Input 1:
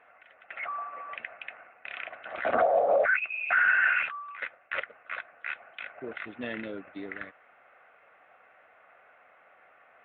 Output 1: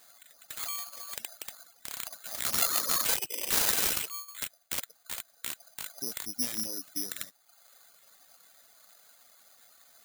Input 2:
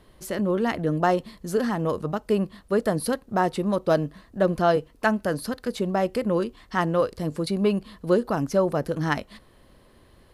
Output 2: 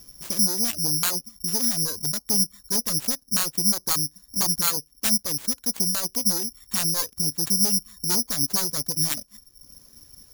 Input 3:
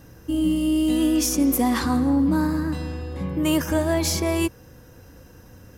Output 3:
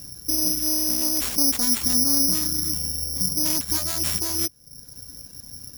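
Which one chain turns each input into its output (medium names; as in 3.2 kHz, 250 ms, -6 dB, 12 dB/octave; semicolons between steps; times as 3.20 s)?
self-modulated delay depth 0.81 ms; reverb removal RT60 0.77 s; in parallel at +2 dB: compression, threshold -35 dBFS; on the sum: resonant low shelf 320 Hz +6 dB, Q 1.5; careless resampling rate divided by 8×, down none, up zero stuff; trim -13.5 dB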